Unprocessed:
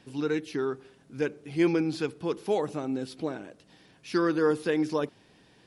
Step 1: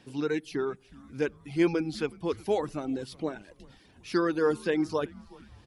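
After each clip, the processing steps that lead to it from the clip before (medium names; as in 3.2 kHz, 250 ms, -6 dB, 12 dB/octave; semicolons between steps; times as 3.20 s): reverb removal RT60 0.67 s; frequency-shifting echo 367 ms, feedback 56%, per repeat -120 Hz, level -22 dB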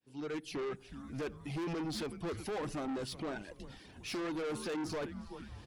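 fade-in on the opening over 0.78 s; peak limiter -23.5 dBFS, peak gain reduction 11 dB; saturation -38.5 dBFS, distortion -6 dB; trim +3.5 dB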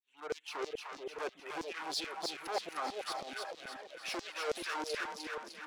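local Wiener filter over 9 samples; LFO high-pass saw down 3.1 Hz 490–5800 Hz; on a send: two-band feedback delay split 660 Hz, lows 430 ms, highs 304 ms, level -3.5 dB; on the sum: trim +2 dB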